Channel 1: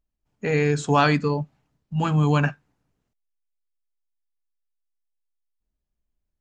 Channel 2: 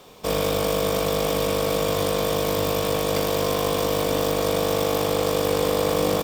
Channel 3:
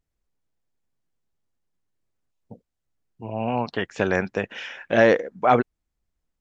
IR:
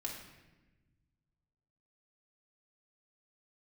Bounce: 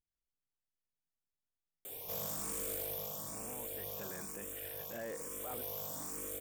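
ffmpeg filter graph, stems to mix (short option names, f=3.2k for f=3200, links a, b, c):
-filter_complex "[1:a]aexciter=amount=7.9:drive=3.7:freq=6.4k,asplit=2[a][b];[b]afreqshift=1.1[c];[a][c]amix=inputs=2:normalize=1,adelay=1850,volume=8dB,afade=t=out:st=2.68:d=0.5:silence=0.266073,afade=t=out:st=4.09:d=0.25:silence=0.446684,afade=t=in:st=5.2:d=0.43:silence=0.281838[d];[2:a]volume=-17.5dB[e];[d][e]amix=inputs=2:normalize=0,asoftclip=type=tanh:threshold=-23dB,alimiter=level_in=11dB:limit=-24dB:level=0:latency=1:release=10,volume=-11dB"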